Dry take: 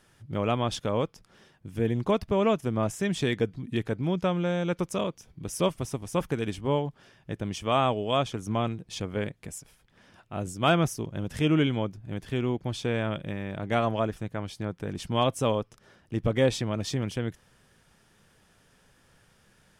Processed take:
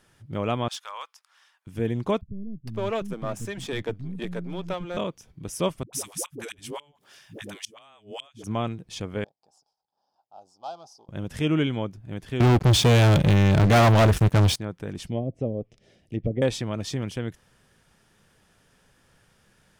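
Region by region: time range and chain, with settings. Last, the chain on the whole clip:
0.68–1.67 s: Chebyshev high-pass 1 kHz, order 3 + hard clipper -28 dBFS
2.21–4.97 s: partial rectifier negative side -7 dB + bands offset in time lows, highs 460 ms, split 230 Hz
5.83–8.44 s: tilt EQ +4 dB/octave + inverted gate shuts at -18 dBFS, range -30 dB + phase dispersion highs, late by 99 ms, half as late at 400 Hz
9.24–11.09 s: partial rectifier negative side -7 dB + two resonant band-passes 2 kHz, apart 2.6 oct + tape noise reduction on one side only decoder only
12.40–14.56 s: high-pass 53 Hz 24 dB/octave + bass shelf 110 Hz +11.5 dB + waveshaping leveller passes 5
15.07–16.42 s: low-pass that closes with the level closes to 340 Hz, closed at -20 dBFS + high-order bell 1.2 kHz -15 dB 1.1 oct
whole clip: none

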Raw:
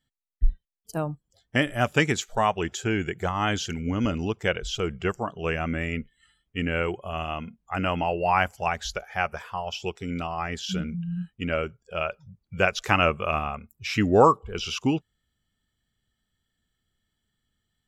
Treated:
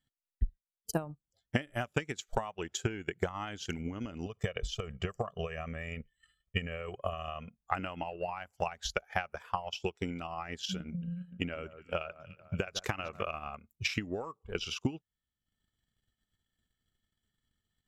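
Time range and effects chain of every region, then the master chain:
4.26–7.61 s: comb 1.7 ms, depth 83% + compression 10:1, threshold -25 dBFS
10.87–13.23 s: compression 2.5:1, threshold -26 dBFS + echo whose repeats swap between lows and highs 147 ms, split 1.6 kHz, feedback 61%, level -11 dB
whole clip: compression 16:1, threshold -30 dBFS; transient shaper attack +11 dB, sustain -9 dB; trim -6 dB

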